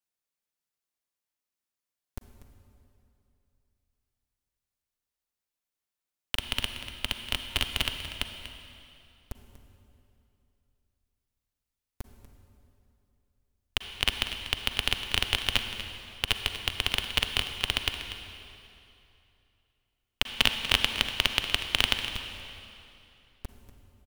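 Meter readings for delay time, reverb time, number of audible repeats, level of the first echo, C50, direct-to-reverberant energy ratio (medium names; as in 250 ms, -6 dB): 241 ms, 2.8 s, 1, -13.0 dB, 6.0 dB, 6.0 dB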